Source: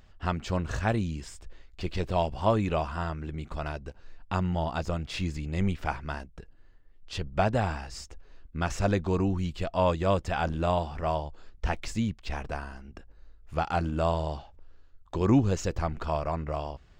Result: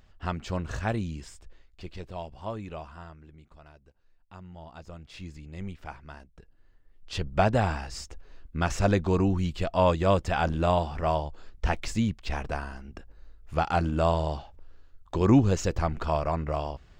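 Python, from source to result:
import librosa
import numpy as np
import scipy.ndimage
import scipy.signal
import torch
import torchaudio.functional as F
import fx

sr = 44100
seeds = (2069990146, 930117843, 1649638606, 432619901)

y = fx.gain(x, sr, db=fx.line((1.22, -2.0), (2.14, -11.0), (2.88, -11.0), (3.61, -18.5), (4.33, -18.5), (5.26, -10.0), (6.15, -10.0), (7.21, 2.5)))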